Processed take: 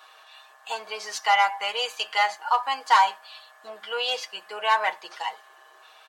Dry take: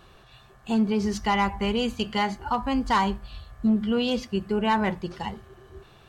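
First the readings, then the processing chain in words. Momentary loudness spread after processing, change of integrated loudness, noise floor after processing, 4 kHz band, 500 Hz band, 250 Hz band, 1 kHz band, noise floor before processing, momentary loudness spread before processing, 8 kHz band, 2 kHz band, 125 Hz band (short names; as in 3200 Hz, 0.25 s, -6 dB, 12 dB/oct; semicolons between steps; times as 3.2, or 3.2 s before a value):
15 LU, +1.0 dB, -54 dBFS, +5.0 dB, -5.0 dB, under -30 dB, +4.5 dB, -54 dBFS, 12 LU, +5.0 dB, +5.5 dB, under -35 dB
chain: HPF 670 Hz 24 dB/oct; comb 6.4 ms, depth 68%; gain +3.5 dB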